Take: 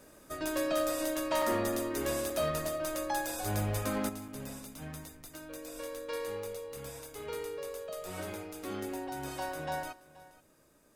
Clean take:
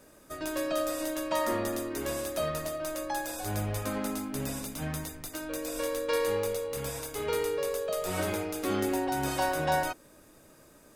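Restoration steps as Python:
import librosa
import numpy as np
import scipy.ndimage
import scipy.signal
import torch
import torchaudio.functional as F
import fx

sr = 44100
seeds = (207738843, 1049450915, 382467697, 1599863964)

y = fx.fix_declip(x, sr, threshold_db=-24.0)
y = fx.fix_interpolate(y, sr, at_s=(1.42, 2.3, 4.28), length_ms=3.4)
y = fx.fix_echo_inverse(y, sr, delay_ms=478, level_db=-19.5)
y = fx.gain(y, sr, db=fx.steps((0.0, 0.0), (4.09, 9.0)))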